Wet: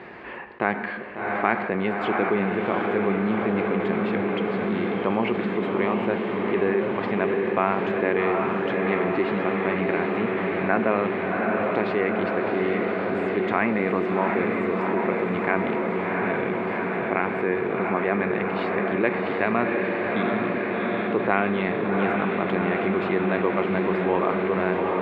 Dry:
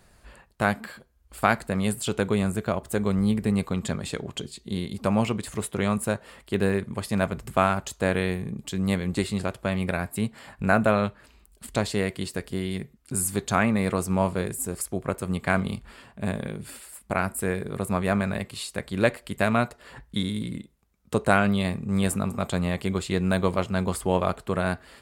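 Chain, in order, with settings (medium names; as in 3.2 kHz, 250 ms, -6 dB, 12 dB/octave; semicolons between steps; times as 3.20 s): cabinet simulation 290–2400 Hz, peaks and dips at 360 Hz +6 dB, 600 Hz -6 dB, 1.4 kHz -6 dB, 2.1 kHz +3 dB; echo that smears into a reverb 739 ms, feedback 73%, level -4 dB; on a send at -18 dB: reverberation RT60 1.0 s, pre-delay 78 ms; on the sum: level flattener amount 50%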